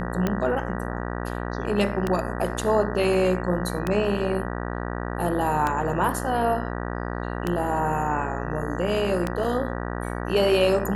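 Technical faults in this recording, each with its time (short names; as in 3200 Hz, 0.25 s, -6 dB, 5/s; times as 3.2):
buzz 60 Hz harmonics 32 -30 dBFS
tick 33 1/3 rpm -11 dBFS
9.44–9.45 gap 5 ms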